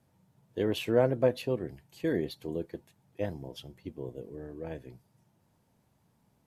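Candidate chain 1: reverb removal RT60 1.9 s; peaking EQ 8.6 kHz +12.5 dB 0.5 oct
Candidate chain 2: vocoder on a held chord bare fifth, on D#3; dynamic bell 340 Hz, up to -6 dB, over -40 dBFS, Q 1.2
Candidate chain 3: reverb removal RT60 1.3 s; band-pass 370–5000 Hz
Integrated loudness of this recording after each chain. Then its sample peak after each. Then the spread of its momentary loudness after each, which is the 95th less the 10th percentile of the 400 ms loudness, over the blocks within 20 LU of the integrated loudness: -33.5 LUFS, -37.0 LUFS, -35.0 LUFS; -13.5 dBFS, -17.5 dBFS, -14.5 dBFS; 20 LU, 13 LU, 21 LU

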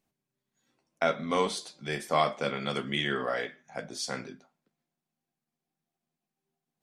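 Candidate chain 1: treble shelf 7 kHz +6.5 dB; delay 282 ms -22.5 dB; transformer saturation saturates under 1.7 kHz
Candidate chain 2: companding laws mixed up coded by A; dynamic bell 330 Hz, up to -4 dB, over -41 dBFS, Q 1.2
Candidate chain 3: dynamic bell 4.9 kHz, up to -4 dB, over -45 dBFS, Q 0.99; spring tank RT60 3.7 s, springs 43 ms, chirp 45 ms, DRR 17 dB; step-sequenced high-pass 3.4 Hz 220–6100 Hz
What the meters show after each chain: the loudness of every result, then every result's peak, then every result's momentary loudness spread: -32.5 LUFS, -33.0 LUFS, -29.5 LUFS; -10.5 dBFS, -12.0 dBFS, -9.5 dBFS; 9 LU, 12 LU, 15 LU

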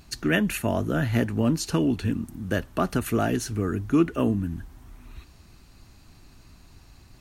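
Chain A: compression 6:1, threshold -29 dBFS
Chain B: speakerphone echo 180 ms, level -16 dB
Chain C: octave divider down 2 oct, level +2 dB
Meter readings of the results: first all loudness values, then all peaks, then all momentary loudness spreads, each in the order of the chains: -34.0 LUFS, -25.5 LUFS, -24.0 LUFS; -17.0 dBFS, -8.5 dBFS, -7.0 dBFS; 21 LU, 6 LU, 6 LU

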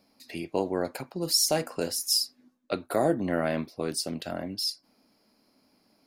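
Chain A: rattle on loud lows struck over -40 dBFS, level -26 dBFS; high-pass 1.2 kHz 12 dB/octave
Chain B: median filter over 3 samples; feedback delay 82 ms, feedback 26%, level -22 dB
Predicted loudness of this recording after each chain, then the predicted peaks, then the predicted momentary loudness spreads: -30.5 LUFS, -29.0 LUFS; -12.0 dBFS, -13.0 dBFS; 16 LU, 10 LU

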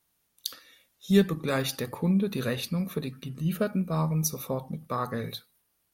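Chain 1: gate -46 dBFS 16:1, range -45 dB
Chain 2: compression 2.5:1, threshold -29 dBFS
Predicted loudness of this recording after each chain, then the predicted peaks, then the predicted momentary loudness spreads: -29.0 LUFS, -33.5 LUFS; -9.5 dBFS, -12.0 dBFS; 14 LU, 8 LU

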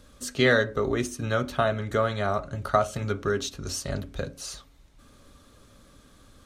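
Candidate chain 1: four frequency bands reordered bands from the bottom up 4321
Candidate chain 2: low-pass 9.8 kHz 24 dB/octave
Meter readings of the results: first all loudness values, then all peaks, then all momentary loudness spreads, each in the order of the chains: -23.5 LUFS, -27.0 LUFS; -7.5 dBFS, -7.0 dBFS; 13 LU, 13 LU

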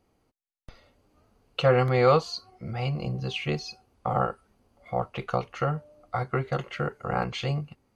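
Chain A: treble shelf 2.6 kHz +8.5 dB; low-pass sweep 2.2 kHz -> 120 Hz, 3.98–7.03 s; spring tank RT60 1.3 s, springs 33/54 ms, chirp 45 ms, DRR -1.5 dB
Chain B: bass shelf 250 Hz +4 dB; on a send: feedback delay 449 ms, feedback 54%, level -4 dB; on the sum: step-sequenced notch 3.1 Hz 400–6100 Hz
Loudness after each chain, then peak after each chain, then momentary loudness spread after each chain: -22.5 LUFS, -26.0 LUFS; -3.0 dBFS, -7.5 dBFS; 14 LU, 10 LU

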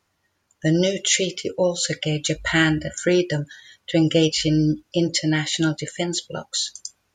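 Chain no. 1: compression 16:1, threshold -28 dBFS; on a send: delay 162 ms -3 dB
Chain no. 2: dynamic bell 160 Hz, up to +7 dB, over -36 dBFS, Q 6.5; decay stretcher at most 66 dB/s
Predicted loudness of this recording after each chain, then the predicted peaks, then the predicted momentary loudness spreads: -31.0 LUFS, -19.5 LUFS; -15.5 dBFS, -4.5 dBFS; 4 LU, 8 LU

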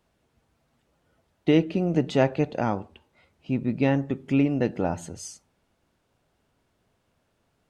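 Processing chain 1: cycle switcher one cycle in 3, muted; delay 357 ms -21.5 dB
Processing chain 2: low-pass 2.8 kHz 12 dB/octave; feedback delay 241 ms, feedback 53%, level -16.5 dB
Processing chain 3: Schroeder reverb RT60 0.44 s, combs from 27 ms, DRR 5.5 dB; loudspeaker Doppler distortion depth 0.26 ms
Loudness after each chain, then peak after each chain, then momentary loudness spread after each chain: -27.0 LUFS, -25.0 LUFS, -25.0 LUFS; -9.5 dBFS, -9.0 dBFS, -6.5 dBFS; 13 LU, 14 LU, 12 LU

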